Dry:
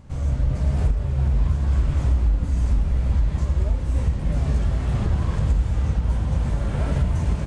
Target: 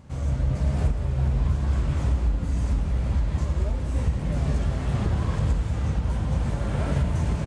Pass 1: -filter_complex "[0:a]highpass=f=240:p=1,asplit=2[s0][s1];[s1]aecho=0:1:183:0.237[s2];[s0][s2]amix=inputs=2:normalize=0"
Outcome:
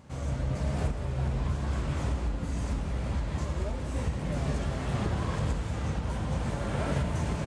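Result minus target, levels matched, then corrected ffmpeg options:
250 Hz band +2.5 dB
-filter_complex "[0:a]highpass=f=76:p=1,asplit=2[s0][s1];[s1]aecho=0:1:183:0.237[s2];[s0][s2]amix=inputs=2:normalize=0"

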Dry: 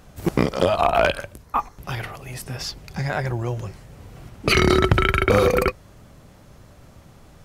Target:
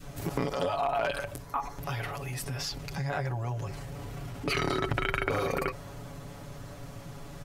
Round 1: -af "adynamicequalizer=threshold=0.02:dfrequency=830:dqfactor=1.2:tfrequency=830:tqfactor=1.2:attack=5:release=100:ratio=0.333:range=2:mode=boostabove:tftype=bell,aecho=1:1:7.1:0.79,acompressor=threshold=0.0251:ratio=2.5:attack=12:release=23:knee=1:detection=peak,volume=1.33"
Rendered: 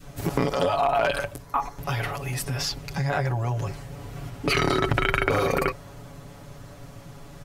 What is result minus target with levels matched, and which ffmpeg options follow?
compression: peak gain reduction -6.5 dB
-af "adynamicequalizer=threshold=0.02:dfrequency=830:dqfactor=1.2:tfrequency=830:tqfactor=1.2:attack=5:release=100:ratio=0.333:range=2:mode=boostabove:tftype=bell,aecho=1:1:7.1:0.79,acompressor=threshold=0.00708:ratio=2.5:attack=12:release=23:knee=1:detection=peak,volume=1.33"

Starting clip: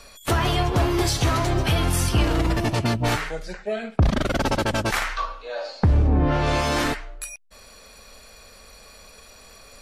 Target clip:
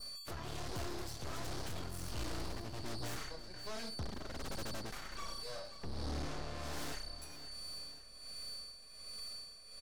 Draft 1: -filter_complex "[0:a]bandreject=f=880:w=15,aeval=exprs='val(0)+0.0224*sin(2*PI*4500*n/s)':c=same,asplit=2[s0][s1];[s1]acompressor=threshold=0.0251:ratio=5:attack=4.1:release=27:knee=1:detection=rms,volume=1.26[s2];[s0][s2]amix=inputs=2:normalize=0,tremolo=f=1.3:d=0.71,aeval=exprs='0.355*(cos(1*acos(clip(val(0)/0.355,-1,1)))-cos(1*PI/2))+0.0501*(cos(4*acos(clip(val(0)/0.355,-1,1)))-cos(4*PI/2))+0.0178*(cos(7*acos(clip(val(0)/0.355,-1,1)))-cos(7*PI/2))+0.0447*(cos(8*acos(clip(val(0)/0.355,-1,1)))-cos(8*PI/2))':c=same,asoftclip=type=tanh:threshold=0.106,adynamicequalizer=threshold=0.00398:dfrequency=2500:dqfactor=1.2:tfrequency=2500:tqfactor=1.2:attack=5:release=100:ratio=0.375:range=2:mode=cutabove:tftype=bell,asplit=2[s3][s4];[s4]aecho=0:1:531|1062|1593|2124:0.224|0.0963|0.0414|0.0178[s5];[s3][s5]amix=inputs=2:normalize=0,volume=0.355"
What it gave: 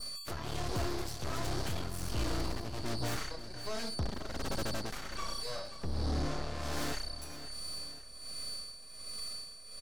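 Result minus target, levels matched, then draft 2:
compression: peak gain reduction -9 dB; saturation: distortion -5 dB
-filter_complex "[0:a]bandreject=f=880:w=15,aeval=exprs='val(0)+0.0224*sin(2*PI*4500*n/s)':c=same,asplit=2[s0][s1];[s1]acompressor=threshold=0.00668:ratio=5:attack=4.1:release=27:knee=1:detection=rms,volume=1.26[s2];[s0][s2]amix=inputs=2:normalize=0,tremolo=f=1.3:d=0.71,aeval=exprs='0.355*(cos(1*acos(clip(val(0)/0.355,-1,1)))-cos(1*PI/2))+0.0501*(cos(4*acos(clip(val(0)/0.355,-1,1)))-cos(4*PI/2))+0.0178*(cos(7*acos(clip(val(0)/0.355,-1,1)))-cos(7*PI/2))+0.0447*(cos(8*acos(clip(val(0)/0.355,-1,1)))-cos(8*PI/2))':c=same,asoftclip=type=tanh:threshold=0.0447,adynamicequalizer=threshold=0.00398:dfrequency=2500:dqfactor=1.2:tfrequency=2500:tqfactor=1.2:attack=5:release=100:ratio=0.375:range=2:mode=cutabove:tftype=bell,asplit=2[s3][s4];[s4]aecho=0:1:531|1062|1593|2124:0.224|0.0963|0.0414|0.0178[s5];[s3][s5]amix=inputs=2:normalize=0,volume=0.355"

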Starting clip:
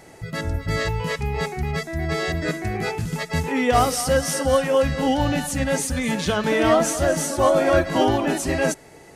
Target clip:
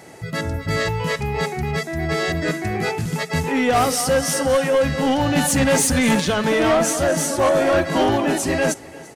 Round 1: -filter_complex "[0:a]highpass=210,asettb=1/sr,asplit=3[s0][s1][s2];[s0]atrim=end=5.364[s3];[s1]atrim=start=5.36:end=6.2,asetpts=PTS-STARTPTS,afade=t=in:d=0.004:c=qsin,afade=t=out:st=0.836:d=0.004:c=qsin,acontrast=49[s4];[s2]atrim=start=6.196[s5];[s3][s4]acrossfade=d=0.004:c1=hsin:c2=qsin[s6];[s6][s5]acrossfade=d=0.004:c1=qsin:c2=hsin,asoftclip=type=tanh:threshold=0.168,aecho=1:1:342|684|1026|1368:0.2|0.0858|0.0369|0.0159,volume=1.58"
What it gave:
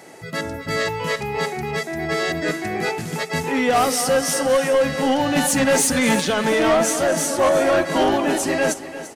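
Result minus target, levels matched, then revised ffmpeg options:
125 Hz band -6.0 dB; echo-to-direct +7.5 dB
-filter_complex "[0:a]highpass=91,asettb=1/sr,asplit=3[s0][s1][s2];[s0]atrim=end=5.364[s3];[s1]atrim=start=5.36:end=6.2,asetpts=PTS-STARTPTS,afade=t=in:d=0.004:c=qsin,afade=t=out:st=0.836:d=0.004:c=qsin,acontrast=49[s4];[s2]atrim=start=6.196[s5];[s3][s4]acrossfade=d=0.004:c1=hsin:c2=qsin[s6];[s6][s5]acrossfade=d=0.004:c1=qsin:c2=hsin,asoftclip=type=tanh:threshold=0.168,aecho=1:1:342|684|1026:0.0841|0.0362|0.0156,volume=1.58"

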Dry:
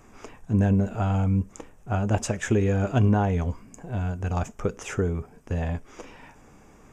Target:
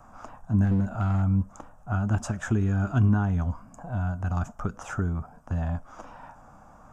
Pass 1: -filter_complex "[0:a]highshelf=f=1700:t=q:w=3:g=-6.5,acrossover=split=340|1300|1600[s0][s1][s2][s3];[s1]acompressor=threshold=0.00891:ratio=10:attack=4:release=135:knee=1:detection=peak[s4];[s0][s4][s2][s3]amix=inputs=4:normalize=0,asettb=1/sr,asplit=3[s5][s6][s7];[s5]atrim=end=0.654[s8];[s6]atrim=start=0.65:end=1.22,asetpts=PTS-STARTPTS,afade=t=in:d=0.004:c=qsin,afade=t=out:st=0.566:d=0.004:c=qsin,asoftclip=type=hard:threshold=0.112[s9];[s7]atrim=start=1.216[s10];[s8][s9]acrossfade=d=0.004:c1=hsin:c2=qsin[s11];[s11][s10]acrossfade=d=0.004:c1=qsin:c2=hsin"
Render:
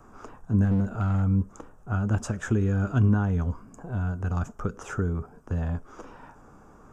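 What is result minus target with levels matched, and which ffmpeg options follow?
500 Hz band +3.0 dB
-filter_complex "[0:a]highshelf=f=1700:t=q:w=3:g=-6.5,acrossover=split=340|1300|1600[s0][s1][s2][s3];[s1]acompressor=threshold=0.00891:ratio=10:attack=4:release=135:knee=1:detection=peak,highpass=f=660:t=q:w=2.2[s4];[s0][s4][s2][s3]amix=inputs=4:normalize=0,asettb=1/sr,asplit=3[s5][s6][s7];[s5]atrim=end=0.654[s8];[s6]atrim=start=0.65:end=1.22,asetpts=PTS-STARTPTS,afade=t=in:d=0.004:c=qsin,afade=t=out:st=0.566:d=0.004:c=qsin,asoftclip=type=hard:threshold=0.112[s9];[s7]atrim=start=1.216[s10];[s8][s9]acrossfade=d=0.004:c1=hsin:c2=qsin[s11];[s11][s10]acrossfade=d=0.004:c1=qsin:c2=hsin"

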